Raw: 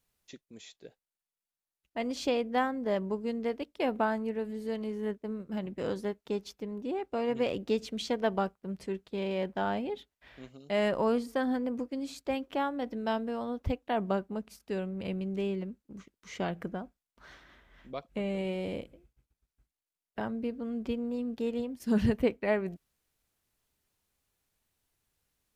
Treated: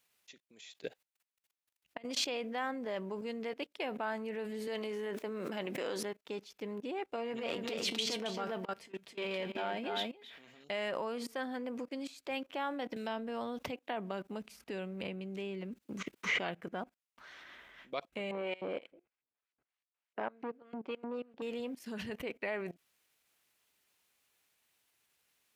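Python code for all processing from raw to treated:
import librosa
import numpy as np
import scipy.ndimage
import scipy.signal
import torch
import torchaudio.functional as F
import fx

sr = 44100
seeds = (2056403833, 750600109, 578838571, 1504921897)

y = fx.chain(x, sr, fx.low_shelf(hz=120.0, db=10.5),
    fx.over_compress(threshold_db=-39.0, ratio=-0.5), at=(0.62, 2.05))
y = fx.chain(y, sr, fx.highpass(hz=250.0, slope=12),
    fx.env_flatten(amount_pct=100), at=(4.67, 6.03))
y = fx.chain(y, sr, fx.transient(attack_db=-11, sustain_db=12),
    fx.comb_fb(f0_hz=230.0, decay_s=0.17, harmonics='all', damping=0.0, mix_pct=60),
    fx.echo_single(ms=272, db=-5.5), at=(7.16, 10.64))
y = fx.chain(y, sr, fx.low_shelf(hz=260.0, db=6.0),
    fx.band_squash(depth_pct=100), at=(12.96, 16.39))
y = fx.chain(y, sr, fx.filter_lfo_bandpass(shape='saw_up', hz=3.3, low_hz=290.0, high_hz=2300.0, q=0.72),
    fx.transformer_sat(knee_hz=560.0), at=(18.31, 21.42))
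y = fx.level_steps(y, sr, step_db=21)
y = fx.highpass(y, sr, hz=490.0, slope=6)
y = fx.peak_eq(y, sr, hz=2500.0, db=5.0, octaves=1.1)
y = y * librosa.db_to_amplitude(8.0)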